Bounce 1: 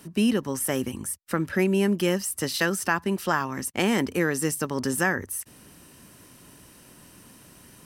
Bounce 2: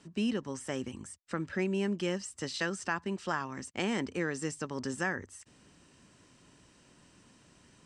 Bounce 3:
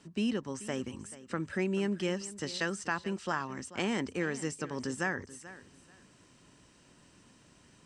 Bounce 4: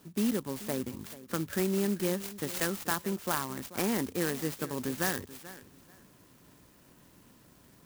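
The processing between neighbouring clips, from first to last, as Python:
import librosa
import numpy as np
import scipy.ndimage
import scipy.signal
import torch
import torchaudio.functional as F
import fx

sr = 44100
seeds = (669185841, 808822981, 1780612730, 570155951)

y1 = scipy.signal.sosfilt(scipy.signal.ellip(4, 1.0, 70, 7900.0, 'lowpass', fs=sr, output='sos'), x)
y1 = F.gain(torch.from_numpy(y1), -8.0).numpy()
y2 = fx.echo_feedback(y1, sr, ms=435, feedback_pct=22, wet_db=-16.5)
y3 = fx.clock_jitter(y2, sr, seeds[0], jitter_ms=0.089)
y3 = F.gain(torch.from_numpy(y3), 2.0).numpy()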